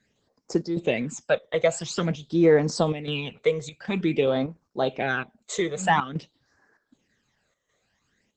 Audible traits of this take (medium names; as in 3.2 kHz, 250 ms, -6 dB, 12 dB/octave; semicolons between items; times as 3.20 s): phasing stages 12, 0.49 Hz, lowest notch 260–3200 Hz; chopped level 1.3 Hz, depth 65%, duty 80%; Opus